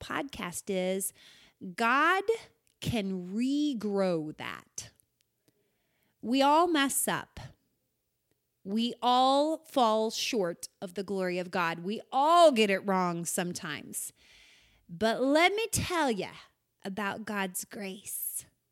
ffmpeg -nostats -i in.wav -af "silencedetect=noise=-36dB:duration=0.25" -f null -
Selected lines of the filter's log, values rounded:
silence_start: 1.09
silence_end: 1.63 | silence_duration: 0.54
silence_start: 2.39
silence_end: 2.82 | silence_duration: 0.44
silence_start: 4.82
silence_end: 6.24 | silence_duration: 1.42
silence_start: 7.45
silence_end: 8.67 | silence_duration: 1.22
silence_start: 14.08
silence_end: 14.94 | silence_duration: 0.86
silence_start: 16.31
silence_end: 16.85 | silence_duration: 0.54
silence_start: 18.40
silence_end: 18.72 | silence_duration: 0.32